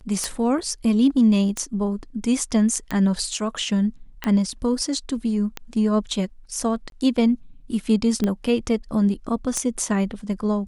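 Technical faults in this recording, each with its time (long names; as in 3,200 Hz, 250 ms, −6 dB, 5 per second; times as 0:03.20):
scratch tick 45 rpm −11 dBFS
0:06.90–0:06.92: drop-out 22 ms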